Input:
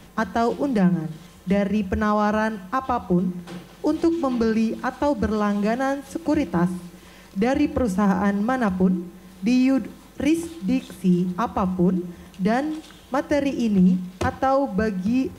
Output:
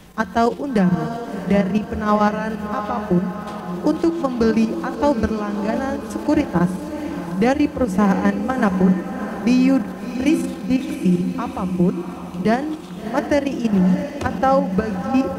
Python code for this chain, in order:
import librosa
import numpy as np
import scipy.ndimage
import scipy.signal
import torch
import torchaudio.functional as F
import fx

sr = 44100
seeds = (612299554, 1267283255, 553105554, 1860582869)

p1 = fx.level_steps(x, sr, step_db=10)
p2 = p1 + fx.echo_diffused(p1, sr, ms=676, feedback_pct=54, wet_db=-8.5, dry=0)
y = F.gain(torch.from_numpy(p2), 5.5).numpy()